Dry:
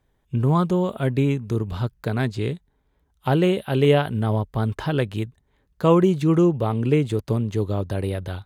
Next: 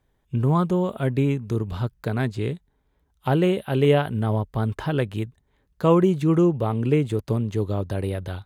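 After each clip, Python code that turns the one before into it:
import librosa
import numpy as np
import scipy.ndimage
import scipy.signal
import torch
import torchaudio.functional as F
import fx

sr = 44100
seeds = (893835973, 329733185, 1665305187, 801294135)

y = fx.dynamic_eq(x, sr, hz=4700.0, q=1.1, threshold_db=-45.0, ratio=4.0, max_db=-4)
y = F.gain(torch.from_numpy(y), -1.0).numpy()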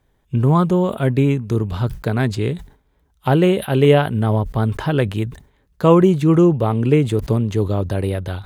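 y = fx.sustainer(x, sr, db_per_s=140.0)
y = F.gain(torch.from_numpy(y), 5.5).numpy()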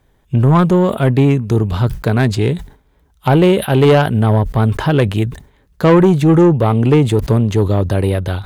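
y = 10.0 ** (-11.0 / 20.0) * np.tanh(x / 10.0 ** (-11.0 / 20.0))
y = F.gain(torch.from_numpy(y), 6.5).numpy()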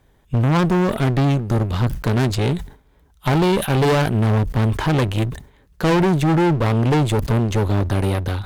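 y = fx.clip_asym(x, sr, top_db=-25.0, bottom_db=-9.5)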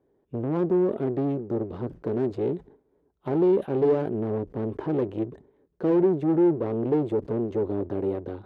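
y = fx.bandpass_q(x, sr, hz=380.0, q=2.5)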